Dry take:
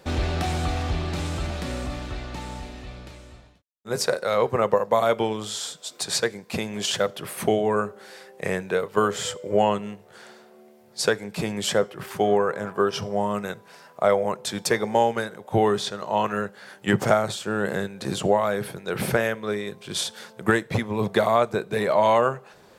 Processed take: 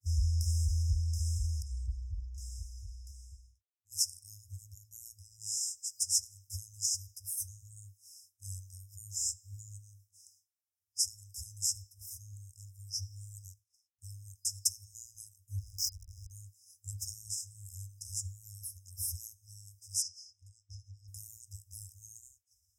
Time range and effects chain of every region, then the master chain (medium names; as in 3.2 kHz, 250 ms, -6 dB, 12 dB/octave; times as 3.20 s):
1.62–2.38 s: resonances exaggerated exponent 1.5 + three bands expanded up and down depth 70%
13.42–14.00 s: companding laws mixed up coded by A + treble shelf 12 kHz -9.5 dB
15.58–16.31 s: compression 8:1, threshold -22 dBFS + peaking EQ 4.9 kHz +11.5 dB 0.82 oct + hysteresis with a dead band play -20 dBFS
20.02–21.08 s: compression 5:1, threshold -30 dBFS + resonant low-pass 4.4 kHz, resonance Q 3.2
whole clip: high-pass 63 Hz; FFT band-reject 100–5000 Hz; expander -57 dBFS